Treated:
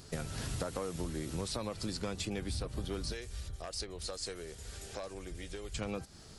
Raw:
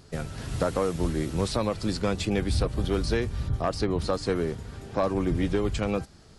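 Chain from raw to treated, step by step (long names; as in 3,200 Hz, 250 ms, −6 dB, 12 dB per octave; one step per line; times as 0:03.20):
high-shelf EQ 3,900 Hz +8.5 dB
downward compressor 6 to 1, threshold −33 dBFS, peak gain reduction 12.5 dB
0:03.12–0:05.75: graphic EQ with 10 bands 125 Hz −11 dB, 250 Hz −11 dB, 1,000 Hz −8 dB, 8,000 Hz +5 dB
level −1.5 dB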